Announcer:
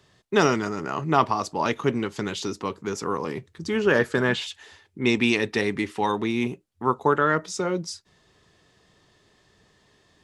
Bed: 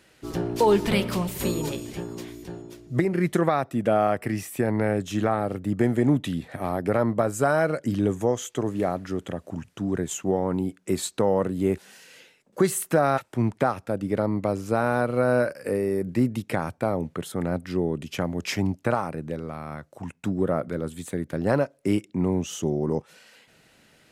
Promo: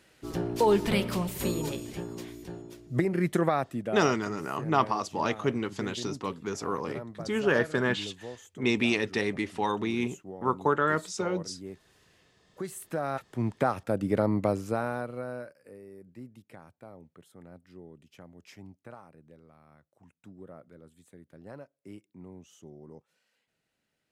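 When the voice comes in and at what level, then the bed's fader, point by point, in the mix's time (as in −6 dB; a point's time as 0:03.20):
3.60 s, −4.5 dB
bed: 0:03.64 −3.5 dB
0:04.14 −18.5 dB
0:12.39 −18.5 dB
0:13.84 −1 dB
0:14.48 −1 dB
0:15.68 −23 dB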